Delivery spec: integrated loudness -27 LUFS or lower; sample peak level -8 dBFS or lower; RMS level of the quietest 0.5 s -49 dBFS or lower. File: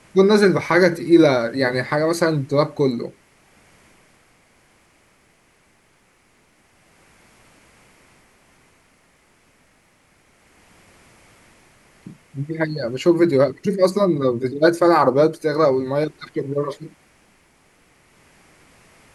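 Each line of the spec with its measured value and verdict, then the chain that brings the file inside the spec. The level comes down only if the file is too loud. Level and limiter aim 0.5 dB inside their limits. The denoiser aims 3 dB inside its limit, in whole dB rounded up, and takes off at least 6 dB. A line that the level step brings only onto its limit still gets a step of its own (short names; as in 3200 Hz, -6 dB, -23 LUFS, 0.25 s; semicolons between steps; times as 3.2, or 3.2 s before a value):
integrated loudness -18.5 LUFS: fail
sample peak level -3.5 dBFS: fail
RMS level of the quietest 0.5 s -59 dBFS: OK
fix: gain -9 dB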